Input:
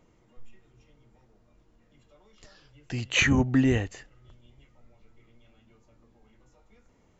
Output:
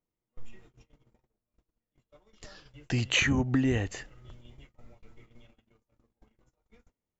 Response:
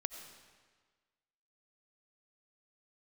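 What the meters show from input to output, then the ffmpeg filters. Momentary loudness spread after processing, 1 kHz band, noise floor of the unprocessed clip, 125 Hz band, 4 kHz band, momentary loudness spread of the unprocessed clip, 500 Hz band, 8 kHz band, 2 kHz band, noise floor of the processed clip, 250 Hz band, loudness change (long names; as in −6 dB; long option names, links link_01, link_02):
12 LU, −3.5 dB, −64 dBFS, −2.0 dB, −0.5 dB, 15 LU, −3.5 dB, can't be measured, −3.0 dB, below −85 dBFS, −3.5 dB, −3.0 dB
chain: -af "agate=range=-32dB:threshold=-56dB:ratio=16:detection=peak,acompressor=threshold=-28dB:ratio=6,volume=5dB"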